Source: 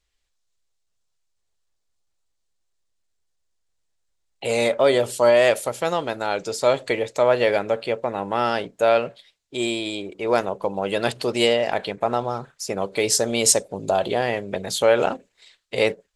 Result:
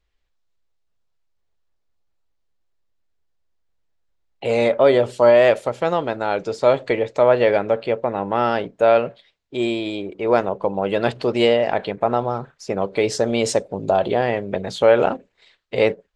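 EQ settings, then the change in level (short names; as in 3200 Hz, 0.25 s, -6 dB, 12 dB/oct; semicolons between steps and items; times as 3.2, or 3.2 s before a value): tape spacing loss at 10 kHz 22 dB; +4.5 dB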